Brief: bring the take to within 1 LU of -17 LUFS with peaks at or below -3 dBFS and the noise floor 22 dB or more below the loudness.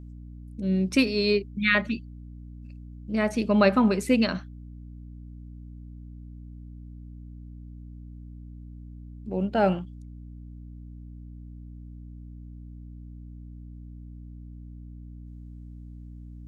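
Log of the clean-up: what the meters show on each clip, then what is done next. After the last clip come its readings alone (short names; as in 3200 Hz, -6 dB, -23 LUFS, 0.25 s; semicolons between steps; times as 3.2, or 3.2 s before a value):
hum 60 Hz; harmonics up to 300 Hz; hum level -40 dBFS; loudness -24.5 LUFS; peak -7.0 dBFS; loudness target -17.0 LUFS
-> de-hum 60 Hz, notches 5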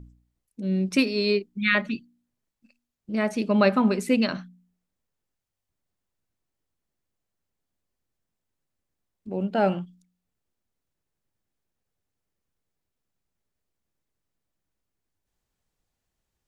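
hum none; loudness -24.5 LUFS; peak -7.0 dBFS; loudness target -17.0 LUFS
-> gain +7.5 dB; limiter -3 dBFS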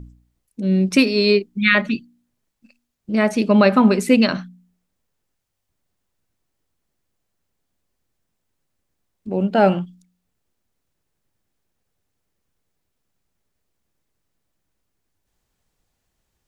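loudness -17.5 LUFS; peak -3.0 dBFS; noise floor -76 dBFS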